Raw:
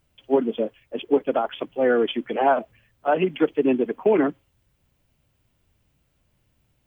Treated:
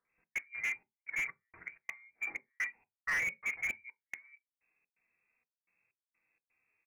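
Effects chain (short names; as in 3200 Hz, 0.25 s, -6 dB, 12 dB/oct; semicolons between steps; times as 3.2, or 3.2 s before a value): three bands offset in time highs, mids, lows 50/90 ms, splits 160/1000 Hz; harmonic-percussive split percussive -16 dB; step gate "xx.xxxx..xx.." 127 bpm -60 dB; flipped gate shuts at -16 dBFS, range -37 dB; in parallel at -11 dB: bit-crush 6-bit; on the sum: three-band isolator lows -13 dB, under 210 Hz, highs -16 dB, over 2000 Hz; inverted band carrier 2600 Hz; on a send at -12 dB: bell 430 Hz +4.5 dB 1.1 oct + reverb RT60 0.15 s, pre-delay 3 ms; on the sum: slew limiter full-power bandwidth 60 Hz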